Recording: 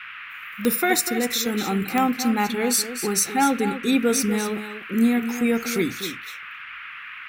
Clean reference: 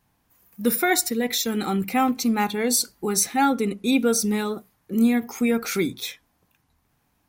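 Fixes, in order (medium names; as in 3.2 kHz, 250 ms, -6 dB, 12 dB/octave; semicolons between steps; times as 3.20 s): de-click; noise print and reduce 30 dB; inverse comb 246 ms -10.5 dB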